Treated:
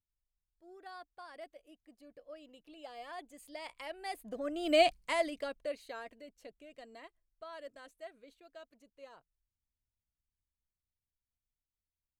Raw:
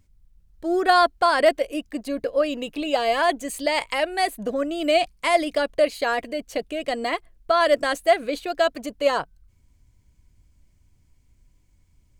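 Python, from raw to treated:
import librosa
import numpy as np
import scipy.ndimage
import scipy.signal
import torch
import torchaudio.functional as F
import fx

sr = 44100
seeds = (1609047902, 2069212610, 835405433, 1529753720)

y = fx.doppler_pass(x, sr, speed_mps=11, closest_m=2.0, pass_at_s=4.83)
y = y * librosa.db_to_amplitude(-5.5)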